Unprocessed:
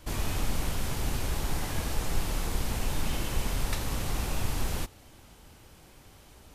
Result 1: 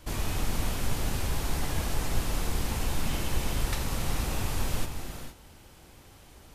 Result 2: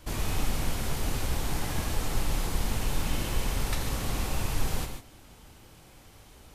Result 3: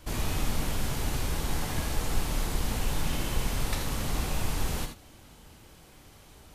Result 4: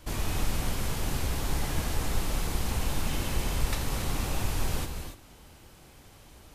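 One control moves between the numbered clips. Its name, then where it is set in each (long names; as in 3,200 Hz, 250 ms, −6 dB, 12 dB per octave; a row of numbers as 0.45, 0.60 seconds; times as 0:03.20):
reverb whose tail is shaped and stops, gate: 490, 170, 100, 310 milliseconds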